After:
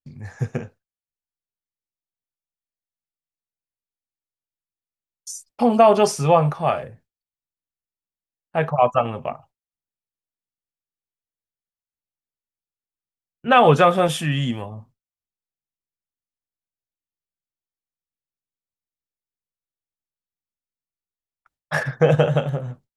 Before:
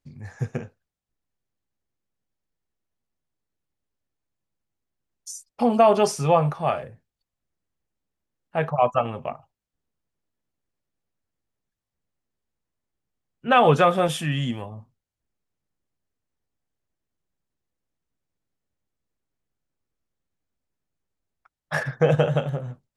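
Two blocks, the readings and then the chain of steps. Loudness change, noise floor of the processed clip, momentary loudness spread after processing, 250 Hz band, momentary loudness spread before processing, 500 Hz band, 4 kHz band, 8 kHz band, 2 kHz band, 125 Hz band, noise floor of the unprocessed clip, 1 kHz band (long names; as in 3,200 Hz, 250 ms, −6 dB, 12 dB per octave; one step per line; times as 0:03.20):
+3.0 dB, below −85 dBFS, 18 LU, +3.0 dB, 18 LU, +3.0 dB, +3.0 dB, +3.0 dB, +3.0 dB, +3.0 dB, below −85 dBFS, +3.0 dB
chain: noise gate with hold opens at −45 dBFS
level +3 dB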